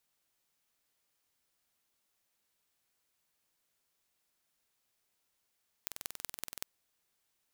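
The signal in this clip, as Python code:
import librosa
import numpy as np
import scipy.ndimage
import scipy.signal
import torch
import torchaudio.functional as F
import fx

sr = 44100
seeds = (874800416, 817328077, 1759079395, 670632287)

y = fx.impulse_train(sr, length_s=0.76, per_s=21.2, accent_every=4, level_db=-9.0)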